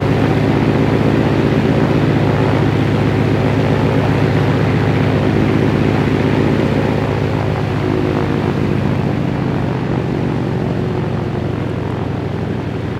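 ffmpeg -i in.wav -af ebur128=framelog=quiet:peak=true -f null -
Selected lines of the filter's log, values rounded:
Integrated loudness:
  I:         -15.4 LUFS
  Threshold: -25.4 LUFS
Loudness range:
  LRA:         4.3 LU
  Threshold: -35.3 LUFS
  LRA low:   -18.2 LUFS
  LRA high:  -13.9 LUFS
True peak:
  Peak:       -2.3 dBFS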